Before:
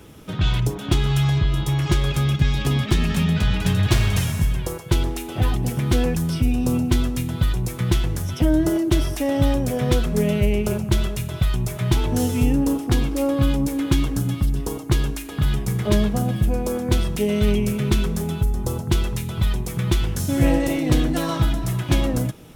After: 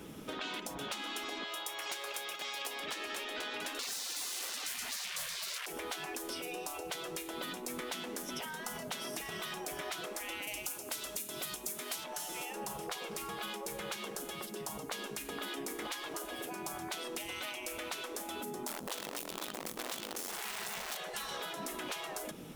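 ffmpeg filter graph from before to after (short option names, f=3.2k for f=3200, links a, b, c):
-filter_complex "[0:a]asettb=1/sr,asplit=3[a][b][c];[a]atrim=end=1.434[d];[b]atrim=start=1.43:end=2.8,asetpts=PTS-STARTPTS,afade=t=in:d=0.004:c=qsin,afade=t=out:st=1.366:d=0.004:c=qsin,highpass=f=530:w=0.5412,highpass=f=530:w=1.3066,highshelf=f=9.8k:g=8.5[e];[c]atrim=start=2.796[f];[d][e]acrossfade=d=0.004:c1=hsin:c2=qsin[g];[g][f]acrossfade=d=0.004:c1=qsin:c2=hsin,asettb=1/sr,asplit=3[h][i][j];[h]atrim=end=3.794[k];[i]atrim=start=3.79:end=5.66,asetpts=PTS-STARTPTS,afade=t=in:d=0.004:c=qsin,afade=t=out:st=1.866:d=0.004:c=qsin,bandreject=f=3.8k:w=8.1,asplit=2[l][m];[m]highpass=f=720:p=1,volume=40dB,asoftclip=type=tanh:threshold=-6.5dB[n];[l][n]amix=inputs=2:normalize=0,lowpass=f=3.3k:p=1,volume=-6dB[o];[j]atrim=start=5.656[p];[k][o]acrossfade=d=0.004:c1=hsin:c2=qsin[q];[q][p]acrossfade=d=0.004:c1=qsin:c2=hsin,asettb=1/sr,asplit=3[r][s][t];[r]atrim=end=10.474[u];[s]atrim=start=10.47:end=12.04,asetpts=PTS-STARTPTS,afade=t=in:d=0.004:c=qsin,afade=t=out:st=1.566:d=0.004:c=qsin,highpass=180,bass=f=250:g=4,treble=f=4k:g=13[v];[t]atrim=start=12.036[w];[u][v]acrossfade=d=0.004:c1=hsin:c2=qsin[x];[x][w]acrossfade=d=0.004:c1=qsin:c2=hsin,asettb=1/sr,asplit=3[y][z][aa];[y]atrim=end=18.674[ab];[z]atrim=start=18.67:end=20.97,asetpts=PTS-STARTPTS,afade=t=in:d=0.004:c=qsin,afade=t=out:st=2.296:d=0.004:c=qsin,equalizer=f=1.9k:t=o:w=1.1:g=-6.5,bandreject=f=50:t=h:w=6,bandreject=f=100:t=h:w=6,bandreject=f=150:t=h:w=6,bandreject=f=200:t=h:w=6,bandreject=f=250:t=h:w=6,bandreject=f=300:t=h:w=6,bandreject=f=350:t=h:w=6,acrusher=bits=5:dc=4:mix=0:aa=0.000001[ac];[aa]atrim=start=20.966[ad];[ab][ac]acrossfade=d=0.004:c1=hsin:c2=qsin[ae];[ae][ad]acrossfade=d=0.004:c1=qsin:c2=hsin,afftfilt=real='re*lt(hypot(re,im),0.141)':imag='im*lt(hypot(re,im),0.141)':win_size=1024:overlap=0.75,acompressor=threshold=-34dB:ratio=6,lowshelf=f=140:t=q:w=1.5:g=-8,volume=-3dB"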